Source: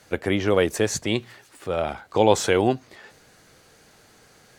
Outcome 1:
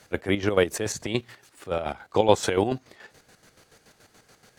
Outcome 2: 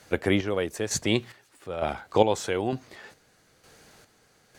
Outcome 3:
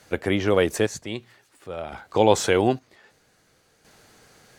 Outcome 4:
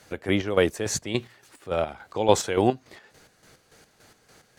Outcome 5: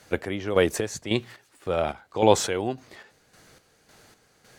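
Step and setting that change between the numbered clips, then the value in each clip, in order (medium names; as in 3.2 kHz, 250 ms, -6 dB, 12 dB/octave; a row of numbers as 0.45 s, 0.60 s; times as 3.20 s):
square tremolo, rate: 7 Hz, 1.1 Hz, 0.52 Hz, 3.5 Hz, 1.8 Hz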